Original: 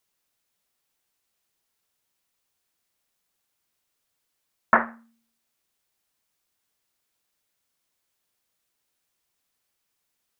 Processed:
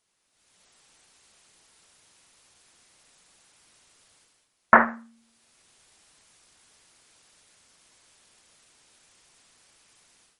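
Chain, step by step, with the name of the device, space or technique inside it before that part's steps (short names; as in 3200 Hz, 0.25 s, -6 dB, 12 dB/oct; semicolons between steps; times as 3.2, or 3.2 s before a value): low-bitrate web radio (AGC gain up to 16 dB; limiter -5 dBFS, peak gain reduction 4 dB; gain +4 dB; MP3 48 kbps 44100 Hz)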